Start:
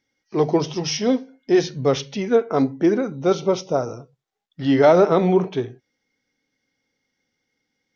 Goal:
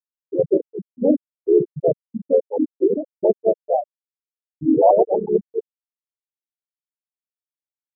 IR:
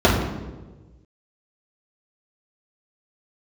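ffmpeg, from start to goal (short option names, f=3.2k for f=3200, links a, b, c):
-filter_complex "[0:a]bandreject=f=60:t=h:w=6,bandreject=f=120:t=h:w=6,bandreject=f=180:t=h:w=6,bandreject=f=240:t=h:w=6,bandreject=f=300:t=h:w=6,bandreject=f=360:t=h:w=6,bandreject=f=420:t=h:w=6,asplit=4[a][b][c][d];[b]asetrate=33038,aresample=44100,atempo=1.33484,volume=-13dB[e];[c]asetrate=37084,aresample=44100,atempo=1.18921,volume=-3dB[f];[d]asetrate=58866,aresample=44100,atempo=0.749154,volume=-12dB[g];[a][e][f][g]amix=inputs=4:normalize=0,adynamicequalizer=threshold=0.0447:dfrequency=200:dqfactor=0.81:tfrequency=200:tqfactor=0.81:attack=5:release=100:ratio=0.375:range=1.5:mode=cutabove:tftype=bell,dynaudnorm=f=150:g=7:m=13dB,asoftclip=type=tanh:threshold=-3.5dB,afftfilt=real='re*gte(hypot(re,im),0.794)':imag='im*gte(hypot(re,im),0.794)':win_size=1024:overlap=0.75,asetrate=50951,aresample=44100,atempo=0.865537"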